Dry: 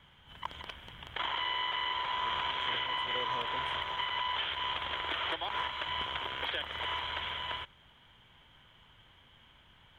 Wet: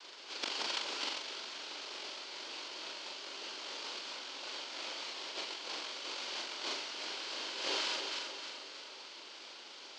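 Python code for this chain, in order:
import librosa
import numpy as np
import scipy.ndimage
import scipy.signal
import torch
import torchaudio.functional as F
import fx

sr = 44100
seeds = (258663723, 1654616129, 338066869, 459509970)

y = fx.noise_vocoder(x, sr, seeds[0], bands=1)
y = fx.cabinet(y, sr, low_hz=350.0, low_slope=24, high_hz=6000.0, hz=(470.0, 730.0, 1200.0, 1800.0, 3100.0, 4500.0), db=(-6, -7, -4, -6, 5, 7))
y = fx.echo_alternate(y, sr, ms=156, hz=870.0, feedback_pct=70, wet_db=-4.0)
y = fx.over_compress(y, sr, threshold_db=-43.0, ratio=-1.0)
y = fx.high_shelf(y, sr, hz=2500.0, db=-11.0)
y = fx.doubler(y, sr, ms=41.0, db=-4.0)
y = y * 10.0 ** (6.0 / 20.0)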